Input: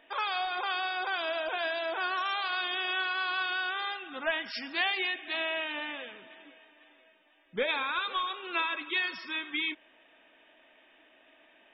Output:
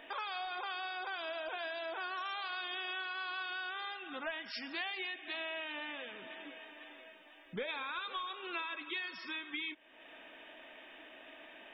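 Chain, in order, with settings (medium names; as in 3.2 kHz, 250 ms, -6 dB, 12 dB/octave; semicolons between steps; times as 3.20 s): compression 2.5:1, threshold -53 dBFS, peak gain reduction 18.5 dB; trim +7 dB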